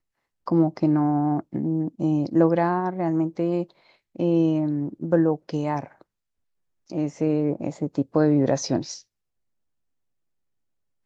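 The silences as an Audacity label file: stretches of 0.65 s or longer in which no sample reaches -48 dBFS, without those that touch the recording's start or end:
6.020000	6.900000	silence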